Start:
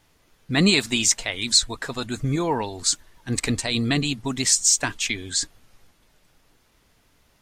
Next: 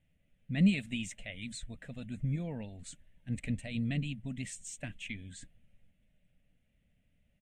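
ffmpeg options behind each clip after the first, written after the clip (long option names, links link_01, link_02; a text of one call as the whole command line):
ffmpeg -i in.wav -af "firequalizer=gain_entry='entry(130,0);entry(190,4);entry(370,-18);entry(570,-4);entry(980,-27);entry(1900,-8);entry(2800,-6);entry(4700,-28);entry(8600,-14);entry(12000,-21)':delay=0.05:min_phase=1,volume=-8dB" out.wav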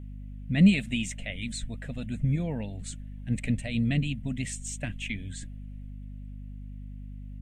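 ffmpeg -i in.wav -af "aeval=exprs='val(0)+0.00501*(sin(2*PI*50*n/s)+sin(2*PI*2*50*n/s)/2+sin(2*PI*3*50*n/s)/3+sin(2*PI*4*50*n/s)/4+sin(2*PI*5*50*n/s)/5)':channel_layout=same,volume=7dB" out.wav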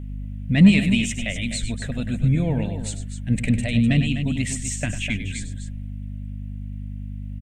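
ffmpeg -i in.wav -filter_complex "[0:a]asplit=2[link_01][link_02];[link_02]asoftclip=type=tanh:threshold=-18dB,volume=-4dB[link_03];[link_01][link_03]amix=inputs=2:normalize=0,aecho=1:1:99.13|250.7:0.282|0.316,volume=3.5dB" out.wav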